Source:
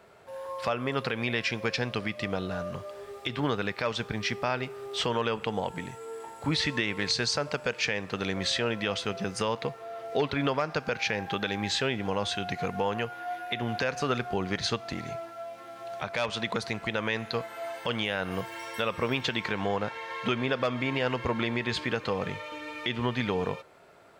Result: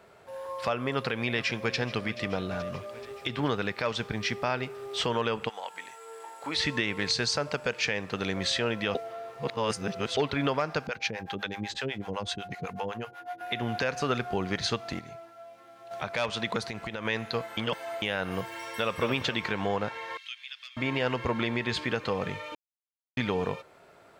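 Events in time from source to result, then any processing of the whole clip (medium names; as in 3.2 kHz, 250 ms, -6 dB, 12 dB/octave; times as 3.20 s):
0.91–1.76 s: echo throw 430 ms, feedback 70%, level -15.5 dB
5.48–6.55 s: high-pass 1.1 kHz -> 420 Hz
8.95–10.17 s: reverse
10.87–13.41 s: harmonic tremolo 8 Hz, depth 100%, crossover 540 Hz
14.99–15.91 s: gain -8 dB
16.62–17.05 s: compression, threshold -31 dBFS
17.57–18.02 s: reverse
18.58–19.01 s: echo throw 220 ms, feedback 40%, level -7 dB
20.17–20.77 s: ladder high-pass 2.3 kHz, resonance 25%
22.55–23.17 s: mute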